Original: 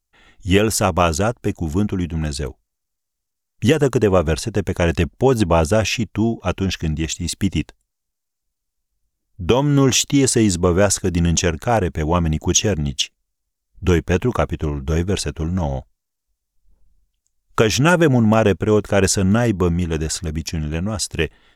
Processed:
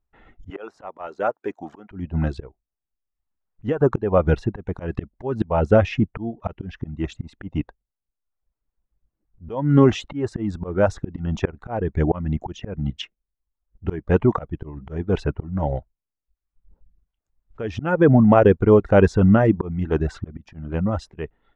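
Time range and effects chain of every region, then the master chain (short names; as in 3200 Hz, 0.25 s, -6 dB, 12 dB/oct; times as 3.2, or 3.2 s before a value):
0.5–1.91 HPF 550 Hz + de-esser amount 65%
whole clip: reverb removal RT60 0.7 s; LPF 1400 Hz 12 dB/oct; auto swell 0.309 s; gain +3 dB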